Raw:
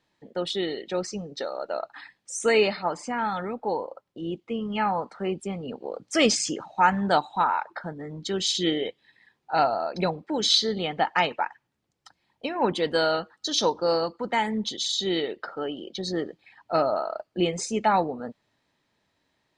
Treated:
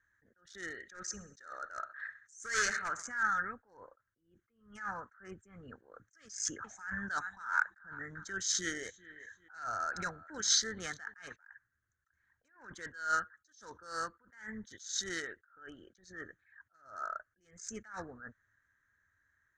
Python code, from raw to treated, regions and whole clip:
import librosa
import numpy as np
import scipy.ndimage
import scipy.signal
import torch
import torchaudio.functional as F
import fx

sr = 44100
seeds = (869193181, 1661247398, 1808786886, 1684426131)

y = fx.chain(x, sr, fx.echo_feedback(ms=64, feedback_pct=56, wet_db=-15.5),
    fx.clip_hard(threshold_db=-21.0),
    fx.high_shelf(hz=2800.0, db=6.5), at=(0.79, 3.23))
y = fx.chain(y, sr, fx.echo_feedback(ms=392, feedback_pct=18, wet_db=-21.0),
    fx.band_squash(depth_pct=40), at=(6.25, 11.36))
y = fx.wiener(y, sr, points=9)
y = fx.curve_eq(y, sr, hz=(100.0, 150.0, 860.0, 1600.0, 2600.0, 4300.0, 6400.0, 12000.0), db=(0, -16, -20, 12, -18, -7, 10, -17))
y = fx.attack_slew(y, sr, db_per_s=120.0)